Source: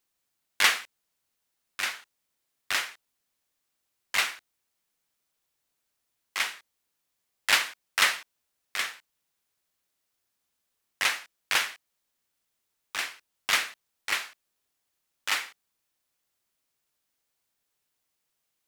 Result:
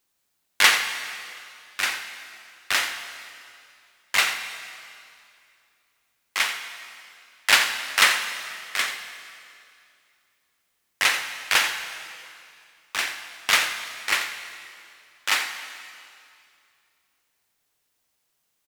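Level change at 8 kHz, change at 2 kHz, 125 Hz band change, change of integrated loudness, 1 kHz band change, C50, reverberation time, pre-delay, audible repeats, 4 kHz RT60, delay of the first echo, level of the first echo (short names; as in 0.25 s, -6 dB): +6.0 dB, +6.0 dB, n/a, +5.0 dB, +6.0 dB, 7.0 dB, 2.5 s, 6 ms, 1, 2.3 s, 87 ms, -12.0 dB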